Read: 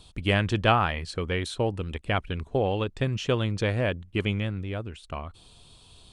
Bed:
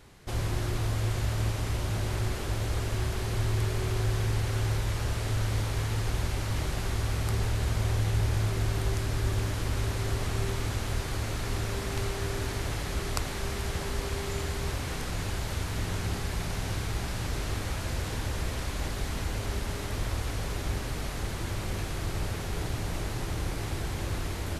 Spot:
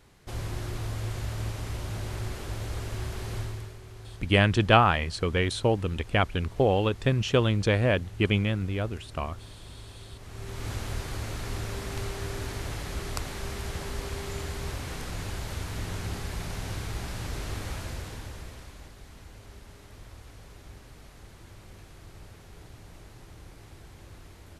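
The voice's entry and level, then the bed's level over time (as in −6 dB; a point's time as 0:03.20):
4.05 s, +2.5 dB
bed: 0:03.38 −4 dB
0:03.80 −16.5 dB
0:10.17 −16.5 dB
0:10.70 −2.5 dB
0:17.76 −2.5 dB
0:18.95 −16 dB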